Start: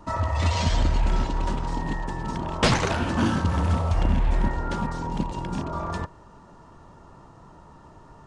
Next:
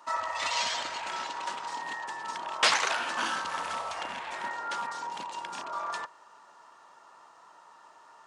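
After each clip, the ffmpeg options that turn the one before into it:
-af "highpass=1k,volume=1.5dB"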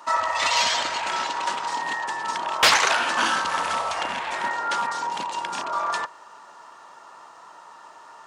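-af "aeval=exprs='0.335*sin(PI/2*1.78*val(0)/0.335)':c=same"

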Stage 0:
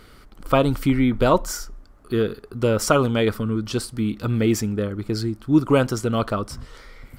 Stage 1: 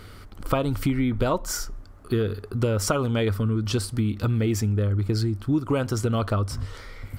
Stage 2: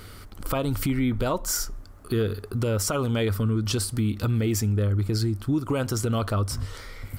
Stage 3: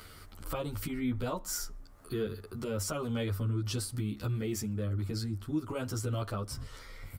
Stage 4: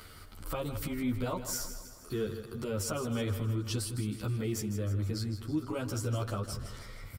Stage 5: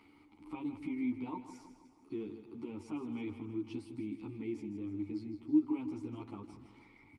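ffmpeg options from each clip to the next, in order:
-af "equalizer=f=97:t=o:w=0.29:g=15,acompressor=threshold=-23dB:ratio=5,volume=2.5dB"
-af "highshelf=f=6.1k:g=8.5,alimiter=limit=-16dB:level=0:latency=1:release=44"
-filter_complex "[0:a]acrossover=split=590[a][b];[b]acompressor=mode=upward:threshold=-39dB:ratio=2.5[c];[a][c]amix=inputs=2:normalize=0,asplit=2[d][e];[e]adelay=11.2,afreqshift=0.43[f];[d][f]amix=inputs=2:normalize=1,volume=-6dB"
-af "aecho=1:1:159|318|477|636|795|954:0.282|0.152|0.0822|0.0444|0.024|0.0129"
-filter_complex "[0:a]asplit=3[a][b][c];[a]bandpass=f=300:t=q:w=8,volume=0dB[d];[b]bandpass=f=870:t=q:w=8,volume=-6dB[e];[c]bandpass=f=2.24k:t=q:w=8,volume=-9dB[f];[d][e][f]amix=inputs=3:normalize=0,volume=6.5dB" -ar 48000 -c:a libopus -b:a 32k

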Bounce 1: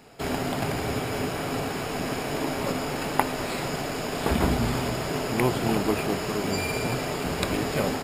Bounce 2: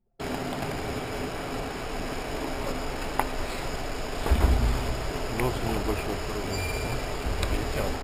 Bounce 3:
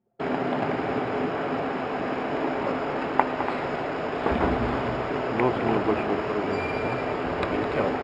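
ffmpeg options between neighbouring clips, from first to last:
-af "anlmdn=2.51,asubboost=boost=10.5:cutoff=53,volume=-3dB"
-filter_complex "[0:a]highpass=180,lowpass=2k,asplit=2[a][b];[b]aecho=0:1:209.9|288.6:0.282|0.282[c];[a][c]amix=inputs=2:normalize=0,volume=6dB"

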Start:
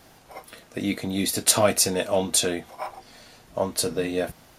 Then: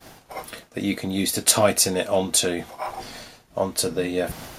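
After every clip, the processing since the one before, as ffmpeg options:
-af "agate=range=-33dB:threshold=-45dB:ratio=3:detection=peak,areverse,acompressor=mode=upward:threshold=-27dB:ratio=2.5,areverse,volume=1.5dB"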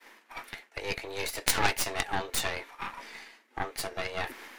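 -af "afreqshift=200,equalizer=f=2k:t=o:w=1.3:g=15,aeval=exprs='1.06*(cos(1*acos(clip(val(0)/1.06,-1,1)))-cos(1*PI/2))+0.473*(cos(3*acos(clip(val(0)/1.06,-1,1)))-cos(3*PI/2))+0.0944*(cos(4*acos(clip(val(0)/1.06,-1,1)))-cos(4*PI/2))+0.133*(cos(5*acos(clip(val(0)/1.06,-1,1)))-cos(5*PI/2))+0.0211*(cos(8*acos(clip(val(0)/1.06,-1,1)))-cos(8*PI/2))':c=same,volume=-4dB"

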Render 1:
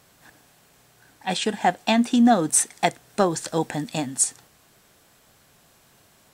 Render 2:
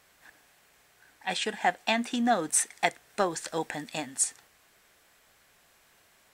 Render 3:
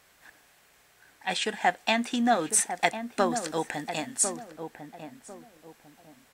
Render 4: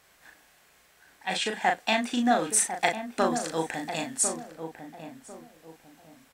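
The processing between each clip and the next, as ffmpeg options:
-af "equalizer=f=125:t=o:w=1:g=-9,equalizer=f=250:t=o:w=1:g=-4,equalizer=f=2k:t=o:w=1:g=6,volume=-6dB"
-filter_complex "[0:a]asplit=2[a][b];[b]adelay=1049,lowpass=f=830:p=1,volume=-7dB,asplit=2[c][d];[d]adelay=1049,lowpass=f=830:p=1,volume=0.32,asplit=2[e][f];[f]adelay=1049,lowpass=f=830:p=1,volume=0.32,asplit=2[g][h];[h]adelay=1049,lowpass=f=830:p=1,volume=0.32[i];[a][c][e][g][i]amix=inputs=5:normalize=0,volume=1.5dB"
-filter_complex "[0:a]asplit=2[a][b];[b]adelay=37,volume=-4.5dB[c];[a][c]amix=inputs=2:normalize=0,volume=-1dB"

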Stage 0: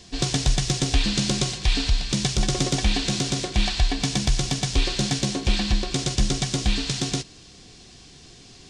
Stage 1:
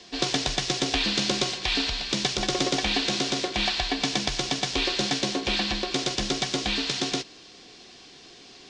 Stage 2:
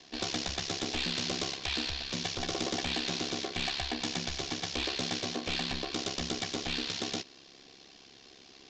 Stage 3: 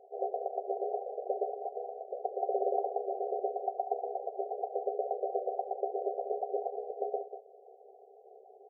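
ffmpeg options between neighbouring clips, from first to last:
-filter_complex "[0:a]acrossover=split=250 6000:gain=0.126 1 0.112[a][b][c];[a][b][c]amix=inputs=3:normalize=0,volume=2.5dB"
-af "aeval=exprs='val(0)*sin(2*PI*34*n/s)':c=same,aresample=16000,asoftclip=type=hard:threshold=-23dB,aresample=44100,volume=-3.5dB"
-filter_complex "[0:a]asplit=2[a][b];[b]adelay=190,highpass=300,lowpass=3.4k,asoftclip=type=hard:threshold=-31dB,volume=-9dB[c];[a][c]amix=inputs=2:normalize=0,afftfilt=real='re*between(b*sr/4096,380,810)':imag='im*between(b*sr/4096,380,810)':win_size=4096:overlap=0.75,volume=8.5dB"

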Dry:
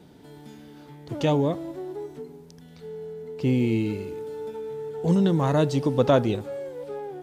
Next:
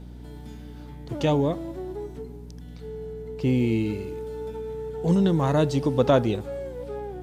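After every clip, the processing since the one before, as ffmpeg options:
-af "aeval=exprs='val(0)+0.01*(sin(2*PI*60*n/s)+sin(2*PI*2*60*n/s)/2+sin(2*PI*3*60*n/s)/3+sin(2*PI*4*60*n/s)/4+sin(2*PI*5*60*n/s)/5)':c=same"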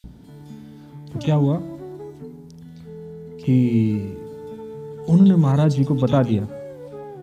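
-filter_complex "[0:a]lowshelf=f=290:t=q:w=1.5:g=7,bandreject=f=60:t=h:w=6,bandreject=f=120:t=h:w=6,bandreject=f=180:t=h:w=6,bandreject=f=240:t=h:w=6,bandreject=f=300:t=h:w=6,acrossover=split=2500[a][b];[a]adelay=40[c];[c][b]amix=inputs=2:normalize=0"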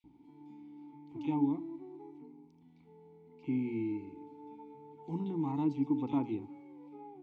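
-filter_complex "[0:a]asplit=3[a][b][c];[a]bandpass=f=300:t=q:w=8,volume=0dB[d];[b]bandpass=f=870:t=q:w=8,volume=-6dB[e];[c]bandpass=f=2.24k:t=q:w=8,volume=-9dB[f];[d][e][f]amix=inputs=3:normalize=0,equalizer=f=210:w=2.1:g=-10.5"

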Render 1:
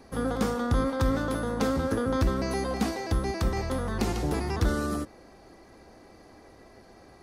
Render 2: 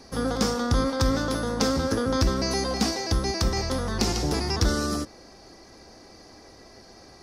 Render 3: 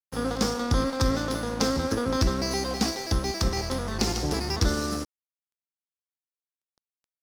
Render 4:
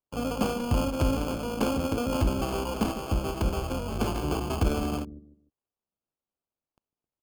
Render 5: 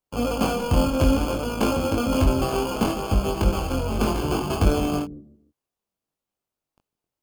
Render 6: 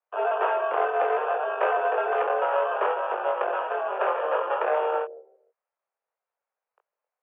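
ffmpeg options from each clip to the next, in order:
-af "equalizer=f=5.3k:w=1.6:g=13.5,volume=2dB"
-af "aeval=exprs='sgn(val(0))*max(abs(val(0))-0.0133,0)':c=same"
-filter_complex "[0:a]acrossover=split=460[a][b];[a]aecho=1:1:150|300|450:0.282|0.0846|0.0254[c];[b]acrusher=samples=23:mix=1:aa=0.000001[d];[c][d]amix=inputs=2:normalize=0,volume=-1.5dB"
-af "flanger=delay=20:depth=3.2:speed=0.62,volume=8.5dB"
-af "aeval=exprs='clip(val(0),-1,0.106)':c=same,highpass=f=320:t=q:w=0.5412,highpass=f=320:t=q:w=1.307,lowpass=f=2.2k:t=q:w=0.5176,lowpass=f=2.2k:t=q:w=0.7071,lowpass=f=2.2k:t=q:w=1.932,afreqshift=170,volume=2.5dB"

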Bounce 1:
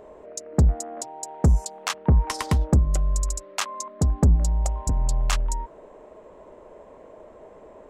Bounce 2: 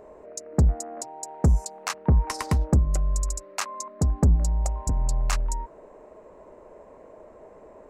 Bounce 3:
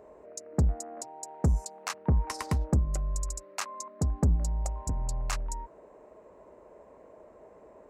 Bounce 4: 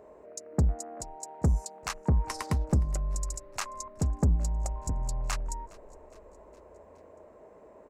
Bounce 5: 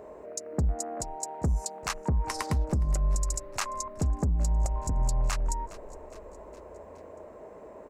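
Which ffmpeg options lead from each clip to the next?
-af "equalizer=f=3.3k:w=3.8:g=-9,volume=-1.5dB"
-af "highpass=41,volume=-5dB"
-filter_complex "[0:a]asplit=5[a][b][c][d][e];[b]adelay=414,afreqshift=-31,volume=-23dB[f];[c]adelay=828,afreqshift=-62,volume=-27.6dB[g];[d]adelay=1242,afreqshift=-93,volume=-32.2dB[h];[e]adelay=1656,afreqshift=-124,volume=-36.7dB[i];[a][f][g][h][i]amix=inputs=5:normalize=0"
-af "alimiter=level_in=1.5dB:limit=-24dB:level=0:latency=1:release=108,volume=-1.5dB,volume=6.5dB"

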